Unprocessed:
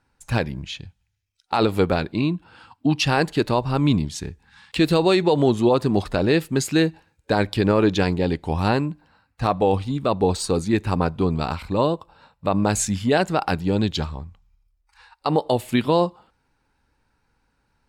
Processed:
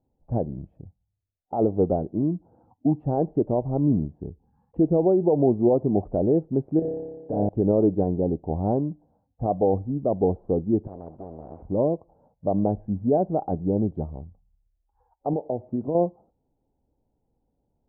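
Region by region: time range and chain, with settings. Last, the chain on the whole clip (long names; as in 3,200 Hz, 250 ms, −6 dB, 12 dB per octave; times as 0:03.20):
0:06.79–0:07.49: high-pass filter 41 Hz + downward compressor 5 to 1, threshold −23 dBFS + flutter between parallel walls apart 5 metres, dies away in 1.3 s
0:10.87–0:11.62: lower of the sound and its delayed copy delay 0.79 ms + high-pass filter 40 Hz + every bin compressed towards the loudest bin 4 to 1
0:15.33–0:15.95: high-pass filter 57 Hz + downward compressor 3 to 1, threshold −21 dBFS
whole clip: Chebyshev low-pass filter 710 Hz, order 4; low-shelf EQ 200 Hz −4.5 dB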